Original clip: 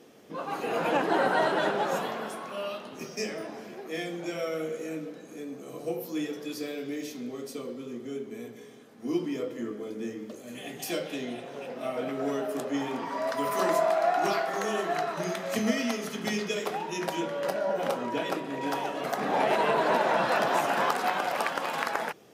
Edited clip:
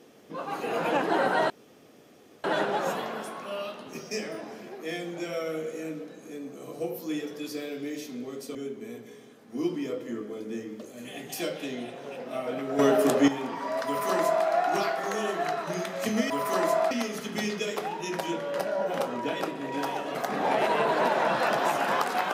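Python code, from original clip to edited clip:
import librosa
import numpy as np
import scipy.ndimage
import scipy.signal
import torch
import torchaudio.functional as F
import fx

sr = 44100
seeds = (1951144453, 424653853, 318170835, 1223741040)

y = fx.edit(x, sr, fx.insert_room_tone(at_s=1.5, length_s=0.94),
    fx.cut(start_s=7.61, length_s=0.44),
    fx.clip_gain(start_s=12.29, length_s=0.49, db=10.0),
    fx.duplicate(start_s=13.36, length_s=0.61, to_s=15.8), tone=tone)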